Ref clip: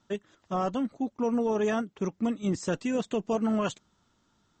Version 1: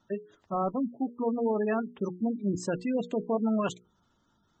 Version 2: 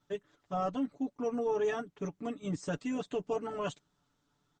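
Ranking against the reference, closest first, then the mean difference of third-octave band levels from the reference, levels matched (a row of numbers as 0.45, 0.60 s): 2, 1; 2.0, 8.0 dB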